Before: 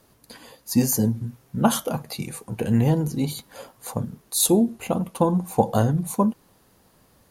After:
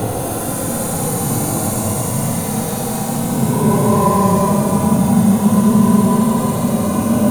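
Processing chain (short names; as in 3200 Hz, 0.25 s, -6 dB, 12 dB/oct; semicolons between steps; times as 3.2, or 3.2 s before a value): zero-crossing step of -27 dBFS; Schroeder reverb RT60 3.2 s, combs from 32 ms, DRR -1 dB; Paulstretch 28×, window 0.05 s, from 6.06; gain +1.5 dB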